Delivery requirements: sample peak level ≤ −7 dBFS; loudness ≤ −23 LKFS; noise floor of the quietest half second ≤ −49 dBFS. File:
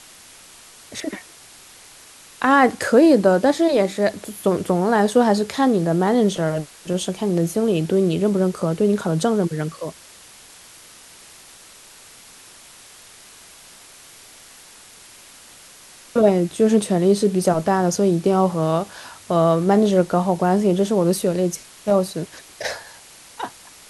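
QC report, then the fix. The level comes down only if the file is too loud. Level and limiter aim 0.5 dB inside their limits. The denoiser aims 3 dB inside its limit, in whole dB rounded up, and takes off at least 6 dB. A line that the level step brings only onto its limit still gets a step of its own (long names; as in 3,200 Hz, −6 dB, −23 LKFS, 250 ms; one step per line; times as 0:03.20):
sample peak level −3.0 dBFS: out of spec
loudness −19.0 LKFS: out of spec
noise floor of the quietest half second −45 dBFS: out of spec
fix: level −4.5 dB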